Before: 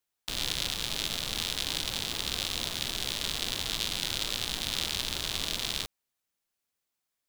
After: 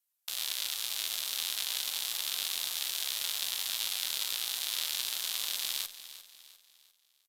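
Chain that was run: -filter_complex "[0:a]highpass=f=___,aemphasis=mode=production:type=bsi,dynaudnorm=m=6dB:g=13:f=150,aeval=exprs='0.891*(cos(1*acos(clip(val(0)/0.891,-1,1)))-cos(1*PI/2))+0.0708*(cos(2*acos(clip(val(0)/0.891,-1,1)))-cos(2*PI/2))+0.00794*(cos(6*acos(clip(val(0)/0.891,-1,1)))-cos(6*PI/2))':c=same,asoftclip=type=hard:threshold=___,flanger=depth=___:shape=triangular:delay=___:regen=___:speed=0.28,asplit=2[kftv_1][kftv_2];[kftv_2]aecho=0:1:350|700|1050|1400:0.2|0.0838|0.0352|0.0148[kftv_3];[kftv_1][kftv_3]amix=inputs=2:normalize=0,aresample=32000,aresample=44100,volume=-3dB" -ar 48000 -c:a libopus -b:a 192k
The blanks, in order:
770, -8.5dB, 3.2, 0.9, -77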